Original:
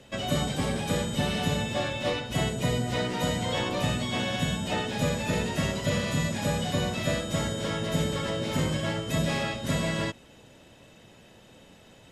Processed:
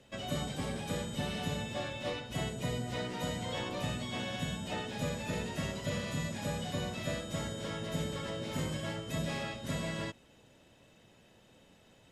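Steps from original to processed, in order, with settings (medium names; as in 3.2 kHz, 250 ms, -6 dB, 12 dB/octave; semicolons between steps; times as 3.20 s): 8.56–8.96 s: treble shelf 11 kHz +7.5 dB; trim -8.5 dB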